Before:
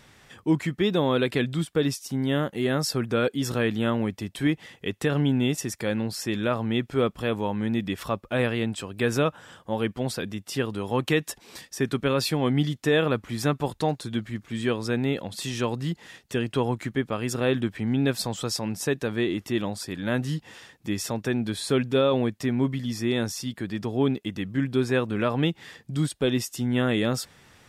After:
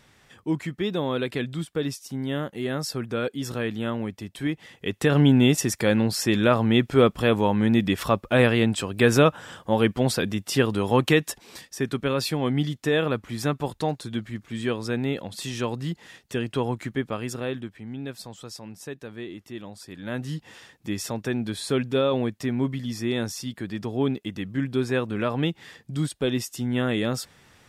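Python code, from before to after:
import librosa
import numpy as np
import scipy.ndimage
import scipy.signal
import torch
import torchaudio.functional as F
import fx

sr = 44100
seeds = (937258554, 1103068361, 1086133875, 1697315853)

y = fx.gain(x, sr, db=fx.line((4.53, -3.5), (5.23, 6.0), (10.89, 6.0), (11.68, -1.0), (17.14, -1.0), (17.79, -11.0), (19.64, -11.0), (20.48, -1.0)))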